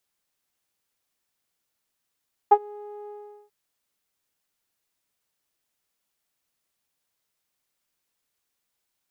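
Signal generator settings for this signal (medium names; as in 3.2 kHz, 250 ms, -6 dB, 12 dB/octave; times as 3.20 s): synth note saw G#4 12 dB/octave, low-pass 650 Hz, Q 7.1, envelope 0.5 oct, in 0.06 s, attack 10 ms, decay 0.06 s, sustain -23 dB, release 0.41 s, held 0.58 s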